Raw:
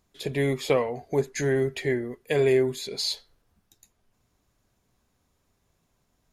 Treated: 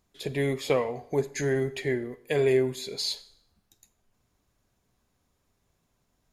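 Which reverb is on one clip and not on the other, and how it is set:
four-comb reverb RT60 0.66 s, combs from 31 ms, DRR 16 dB
level −2 dB

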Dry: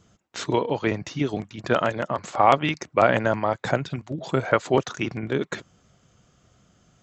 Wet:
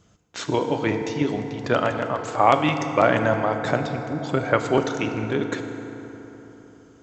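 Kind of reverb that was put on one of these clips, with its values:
feedback delay network reverb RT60 3.9 s, high-frequency decay 0.5×, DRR 5.5 dB

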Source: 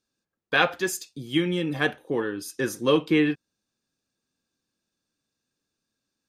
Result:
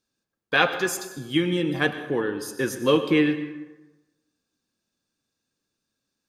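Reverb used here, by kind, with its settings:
dense smooth reverb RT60 1.1 s, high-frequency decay 0.6×, pre-delay 85 ms, DRR 10.5 dB
level +1 dB

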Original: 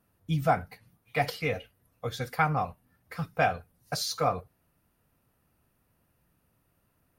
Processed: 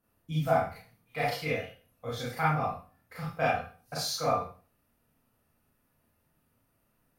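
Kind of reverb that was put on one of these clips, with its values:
four-comb reverb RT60 0.39 s, combs from 26 ms, DRR −7 dB
level −8.5 dB

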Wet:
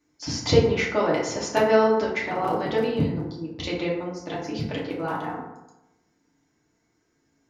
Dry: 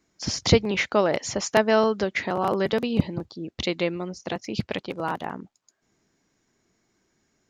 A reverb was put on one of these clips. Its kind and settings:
feedback delay network reverb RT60 0.94 s, low-frequency decay 1×, high-frequency decay 0.45×, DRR −5.5 dB
level −7 dB

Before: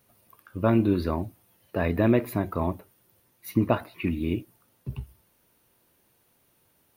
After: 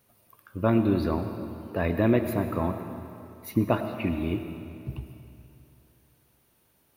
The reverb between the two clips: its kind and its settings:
comb and all-pass reverb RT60 2.7 s, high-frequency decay 0.9×, pre-delay 55 ms, DRR 7.5 dB
level −1 dB

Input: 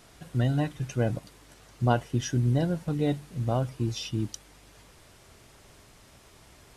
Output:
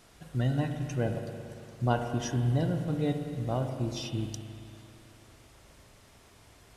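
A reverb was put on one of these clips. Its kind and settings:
spring reverb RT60 2.6 s, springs 38/57 ms, chirp 25 ms, DRR 5 dB
level −3.5 dB

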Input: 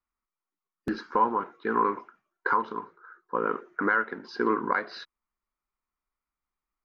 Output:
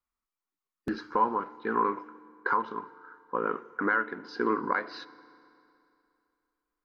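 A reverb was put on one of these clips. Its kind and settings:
feedback delay network reverb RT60 2.7 s, high-frequency decay 0.9×, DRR 18.5 dB
level −2 dB

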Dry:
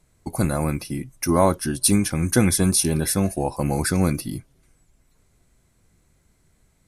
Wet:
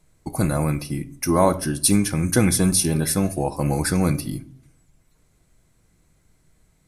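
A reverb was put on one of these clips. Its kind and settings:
rectangular room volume 620 cubic metres, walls furnished, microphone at 0.56 metres

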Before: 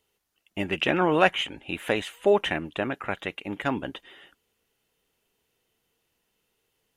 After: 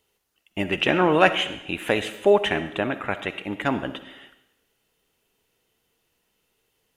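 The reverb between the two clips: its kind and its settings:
comb and all-pass reverb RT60 0.83 s, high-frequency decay 1×, pre-delay 20 ms, DRR 11 dB
level +3 dB

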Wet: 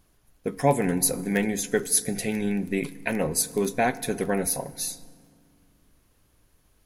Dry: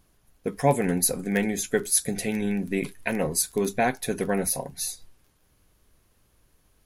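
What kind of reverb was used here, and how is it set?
feedback delay network reverb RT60 2.1 s, low-frequency decay 1.5×, high-frequency decay 0.55×, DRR 16.5 dB

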